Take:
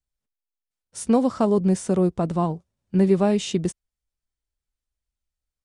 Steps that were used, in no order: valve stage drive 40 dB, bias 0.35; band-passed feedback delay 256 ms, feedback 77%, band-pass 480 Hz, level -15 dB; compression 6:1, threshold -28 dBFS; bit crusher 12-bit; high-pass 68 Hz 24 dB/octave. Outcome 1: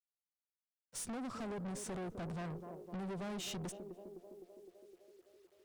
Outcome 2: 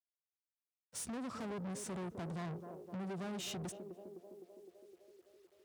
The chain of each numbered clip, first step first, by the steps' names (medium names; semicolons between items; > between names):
compression > band-passed feedback delay > bit crusher > high-pass > valve stage; compression > band-passed feedback delay > bit crusher > valve stage > high-pass